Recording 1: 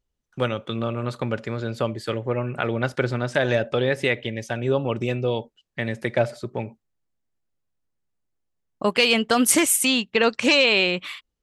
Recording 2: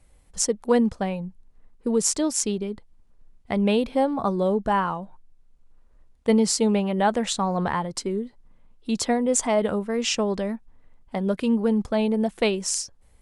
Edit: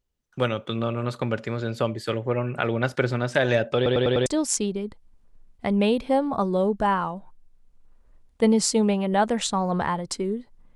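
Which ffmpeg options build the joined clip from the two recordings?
ffmpeg -i cue0.wav -i cue1.wav -filter_complex "[0:a]apad=whole_dur=10.75,atrim=end=10.75,asplit=5[link_01][link_02][link_03][link_04][link_05];[link_01]atrim=end=3.862[link_06];[link_02]atrim=start=3.758:end=3.862[link_07];[link_03]atrim=start=3.758:end=3.862[link_08];[link_04]atrim=start=3.758:end=3.862[link_09];[link_05]atrim=start=3.758:end=3.862[link_10];[1:a]atrim=start=2.118:end=8.61[link_11];[link_06][link_07]acrossfade=duration=0.004:curve1=hsin:curve2=hsin[link_12];[link_12][link_08]acrossfade=duration=0.004:curve1=hsin:curve2=hsin[link_13];[link_13][link_09]acrossfade=duration=0.004:curve1=hsin:curve2=hsin[link_14];[link_14][link_10]acrossfade=duration=0.004:curve1=hsin:curve2=hsin[link_15];[link_15][link_11]acrossfade=duration=0.004:curve1=hsin:curve2=hsin" out.wav

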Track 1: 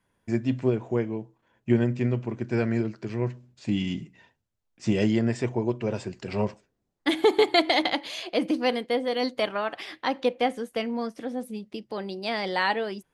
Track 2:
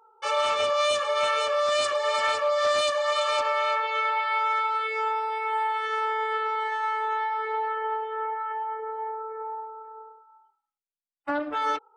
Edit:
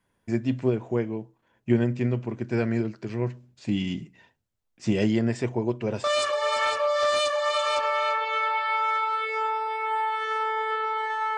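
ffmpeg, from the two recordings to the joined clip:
ffmpeg -i cue0.wav -i cue1.wav -filter_complex "[0:a]apad=whole_dur=11.37,atrim=end=11.37,atrim=end=6.042[link_01];[1:a]atrim=start=1.658:end=6.99[link_02];[link_01][link_02]acrossfade=duration=0.004:curve1=hsin:curve2=hsin" out.wav

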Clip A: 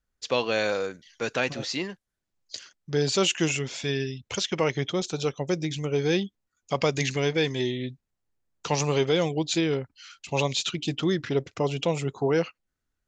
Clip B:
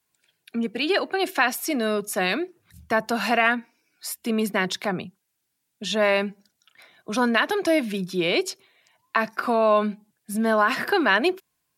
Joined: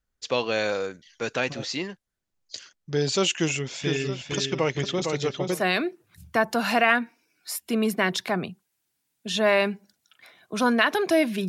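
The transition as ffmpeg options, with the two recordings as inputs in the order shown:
ffmpeg -i cue0.wav -i cue1.wav -filter_complex "[0:a]asplit=3[link_01][link_02][link_03];[link_01]afade=type=out:start_time=3.81:duration=0.02[link_04];[link_02]asplit=2[link_05][link_06];[link_06]adelay=457,lowpass=frequency=4200:poles=1,volume=-4.5dB,asplit=2[link_07][link_08];[link_08]adelay=457,lowpass=frequency=4200:poles=1,volume=0.35,asplit=2[link_09][link_10];[link_10]adelay=457,lowpass=frequency=4200:poles=1,volume=0.35,asplit=2[link_11][link_12];[link_12]adelay=457,lowpass=frequency=4200:poles=1,volume=0.35[link_13];[link_05][link_07][link_09][link_11][link_13]amix=inputs=5:normalize=0,afade=type=in:start_time=3.81:duration=0.02,afade=type=out:start_time=5.62:duration=0.02[link_14];[link_03]afade=type=in:start_time=5.62:duration=0.02[link_15];[link_04][link_14][link_15]amix=inputs=3:normalize=0,apad=whole_dur=11.48,atrim=end=11.48,atrim=end=5.62,asetpts=PTS-STARTPTS[link_16];[1:a]atrim=start=2.06:end=8.04,asetpts=PTS-STARTPTS[link_17];[link_16][link_17]acrossfade=duration=0.12:curve1=tri:curve2=tri" out.wav

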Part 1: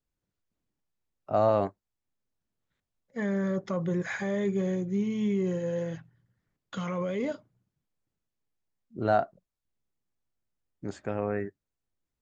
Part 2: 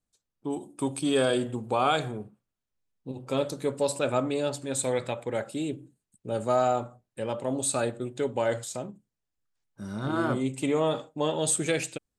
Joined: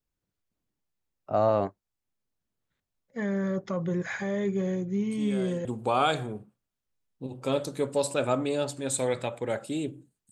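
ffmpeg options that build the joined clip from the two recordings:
ffmpeg -i cue0.wav -i cue1.wav -filter_complex "[1:a]asplit=2[link_01][link_02];[0:a]apad=whole_dur=10.31,atrim=end=10.31,atrim=end=5.652[link_03];[link_02]atrim=start=1.498:end=6.16[link_04];[link_01]atrim=start=0.94:end=1.5,asetpts=PTS-STARTPTS,volume=-14.5dB,afade=type=in:duration=0.004:curve=hsin,afade=type=out:start_time=0.556:duration=0.004:curve=hsin,adelay=224469S[link_05];[link_03][link_04]acrossfade=duration=0.004:curve1=hsin:curve2=hsin[link_06];[link_06][link_05]amix=inputs=2:normalize=0" out.wav

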